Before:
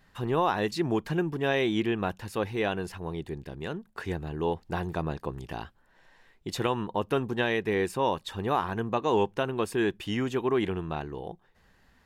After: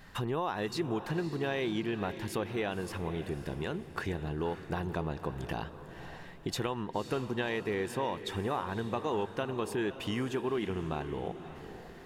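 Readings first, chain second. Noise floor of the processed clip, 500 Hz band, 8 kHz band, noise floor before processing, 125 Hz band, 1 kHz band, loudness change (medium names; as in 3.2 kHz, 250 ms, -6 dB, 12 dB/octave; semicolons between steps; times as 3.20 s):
-48 dBFS, -5.5 dB, -1.5 dB, -63 dBFS, -3.0 dB, -6.0 dB, -5.0 dB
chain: compression 3:1, threshold -44 dBFS, peak gain reduction 17 dB; echo that smears into a reverb 543 ms, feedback 42%, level -11 dB; trim +8.5 dB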